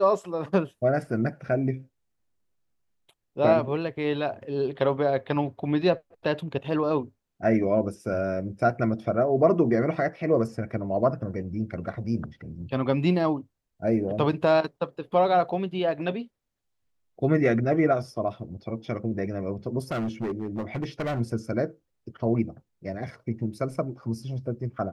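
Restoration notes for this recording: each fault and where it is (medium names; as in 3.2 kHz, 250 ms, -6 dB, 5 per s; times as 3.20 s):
19.91–21.21 s: clipped -25.5 dBFS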